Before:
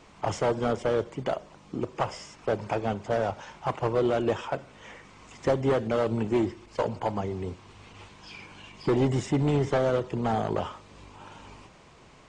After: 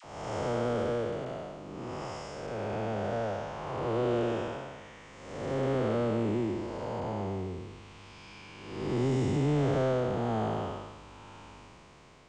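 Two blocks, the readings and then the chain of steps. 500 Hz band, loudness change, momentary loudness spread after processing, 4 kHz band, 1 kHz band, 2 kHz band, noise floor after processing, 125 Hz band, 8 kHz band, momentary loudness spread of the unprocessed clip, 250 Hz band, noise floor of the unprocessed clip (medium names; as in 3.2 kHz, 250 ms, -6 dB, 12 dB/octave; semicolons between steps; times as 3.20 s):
-4.0 dB, -3.5 dB, 20 LU, -3.5 dB, -4.5 dB, -4.0 dB, -52 dBFS, -2.0 dB, -4.5 dB, 21 LU, -3.0 dB, -53 dBFS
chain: spectral blur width 364 ms; phase dispersion lows, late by 44 ms, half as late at 780 Hz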